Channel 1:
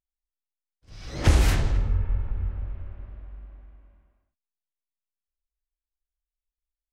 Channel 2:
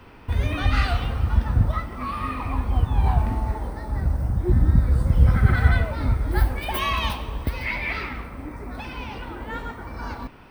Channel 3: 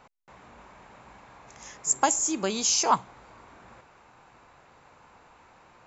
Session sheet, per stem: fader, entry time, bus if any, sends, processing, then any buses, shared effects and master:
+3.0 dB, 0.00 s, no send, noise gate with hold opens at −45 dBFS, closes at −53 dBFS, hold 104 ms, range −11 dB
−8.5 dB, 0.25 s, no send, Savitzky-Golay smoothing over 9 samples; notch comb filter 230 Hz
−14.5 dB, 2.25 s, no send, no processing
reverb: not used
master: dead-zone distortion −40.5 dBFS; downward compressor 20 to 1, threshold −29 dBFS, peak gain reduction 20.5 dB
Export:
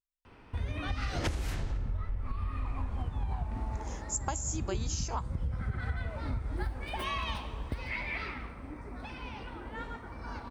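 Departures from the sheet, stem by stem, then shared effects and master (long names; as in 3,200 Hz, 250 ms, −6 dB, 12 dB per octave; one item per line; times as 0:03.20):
stem 2: missing notch comb filter 230 Hz
stem 3 −14.5 dB → −5.5 dB
master: missing dead-zone distortion −40.5 dBFS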